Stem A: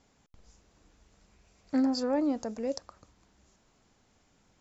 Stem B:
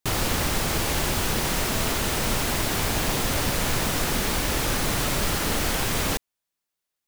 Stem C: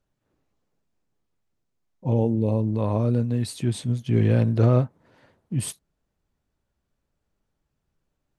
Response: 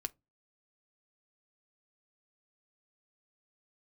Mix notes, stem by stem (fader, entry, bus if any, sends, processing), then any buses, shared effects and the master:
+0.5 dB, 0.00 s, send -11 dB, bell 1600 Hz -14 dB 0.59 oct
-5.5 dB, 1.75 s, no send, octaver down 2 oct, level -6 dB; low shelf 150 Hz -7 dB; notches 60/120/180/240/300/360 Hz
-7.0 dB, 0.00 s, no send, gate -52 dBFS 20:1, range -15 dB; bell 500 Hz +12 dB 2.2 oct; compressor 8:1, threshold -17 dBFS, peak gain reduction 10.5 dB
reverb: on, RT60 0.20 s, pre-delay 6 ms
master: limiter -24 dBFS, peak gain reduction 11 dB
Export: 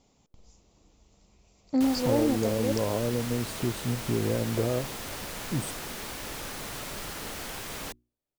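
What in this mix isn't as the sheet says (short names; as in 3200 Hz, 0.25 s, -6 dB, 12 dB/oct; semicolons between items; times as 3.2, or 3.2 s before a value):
stem B -5.5 dB -> -11.5 dB; master: missing limiter -24 dBFS, peak gain reduction 11 dB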